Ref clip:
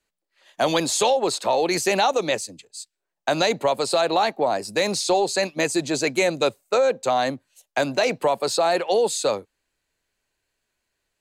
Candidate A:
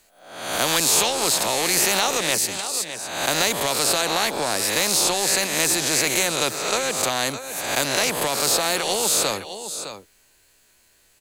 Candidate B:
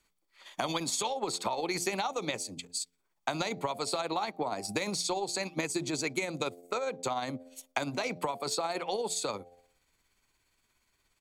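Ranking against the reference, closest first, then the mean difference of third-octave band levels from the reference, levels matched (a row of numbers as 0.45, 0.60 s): B, A; 4.5, 12.5 dB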